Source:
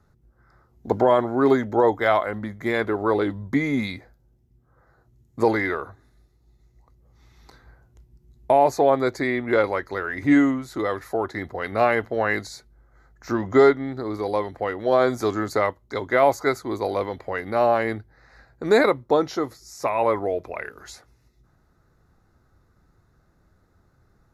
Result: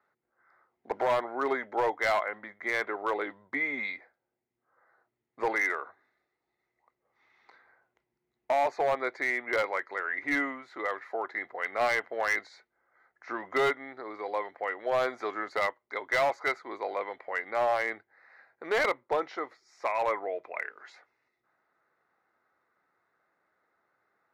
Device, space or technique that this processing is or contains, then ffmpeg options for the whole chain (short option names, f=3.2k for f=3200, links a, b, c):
megaphone: -af "highpass=600,lowpass=2.6k,equalizer=f=2.1k:t=o:w=0.48:g=7,asoftclip=type=hard:threshold=-16.5dB,volume=-4.5dB"